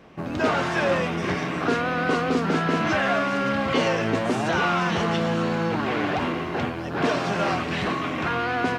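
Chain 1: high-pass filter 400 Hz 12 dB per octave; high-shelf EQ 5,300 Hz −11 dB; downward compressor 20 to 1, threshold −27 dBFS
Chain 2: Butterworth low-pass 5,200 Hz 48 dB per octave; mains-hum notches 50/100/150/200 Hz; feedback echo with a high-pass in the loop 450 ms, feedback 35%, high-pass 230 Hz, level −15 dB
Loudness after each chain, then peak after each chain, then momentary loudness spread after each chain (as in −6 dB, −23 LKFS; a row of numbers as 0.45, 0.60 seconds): −31.0, −24.0 LKFS; −19.5, −9.5 dBFS; 2, 4 LU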